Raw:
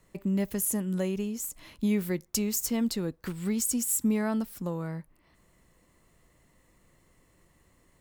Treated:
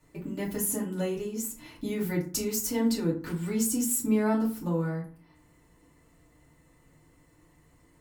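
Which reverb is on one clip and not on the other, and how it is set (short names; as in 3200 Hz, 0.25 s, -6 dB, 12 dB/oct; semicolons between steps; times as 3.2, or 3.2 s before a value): FDN reverb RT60 0.42 s, low-frequency decay 1.3×, high-frequency decay 0.55×, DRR -6.5 dB; gain -5.5 dB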